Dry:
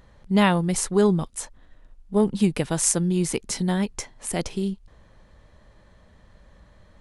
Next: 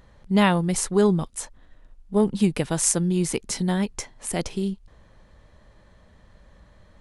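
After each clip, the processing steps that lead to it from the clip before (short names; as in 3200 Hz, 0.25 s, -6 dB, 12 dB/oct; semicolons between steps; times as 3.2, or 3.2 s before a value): nothing audible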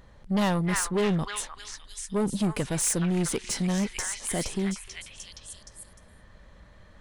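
delay with a stepping band-pass 0.303 s, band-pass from 1600 Hz, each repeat 0.7 oct, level -0.5 dB; soft clip -21 dBFS, distortion -8 dB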